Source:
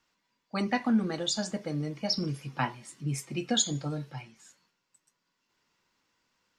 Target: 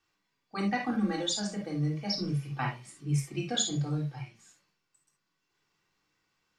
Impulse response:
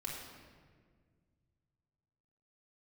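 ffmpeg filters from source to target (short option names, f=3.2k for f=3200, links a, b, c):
-filter_complex "[0:a]asettb=1/sr,asplit=3[a][b][c];[a]atrim=end=0.884[d];[b]atrim=start=0.88:end=1.34,asetpts=PTS-STARTPTS,afade=t=in:d=0.004:c=qsin,afade=t=out:st=0.456:d=0.004:c=qsin,aecho=1:1:3.7:0.84,atrim=end_sample=20286[e];[c]atrim=start=1.336[f];[d][e]acrossfade=d=0.004:c1=hsin:c2=qsin[g];[g][f]acrossfade=d=0.004:c1=qsin:c2=hsin[h];[1:a]atrim=start_sample=2205,atrim=end_sample=3528[i];[h][i]afir=irnorm=-1:irlink=0"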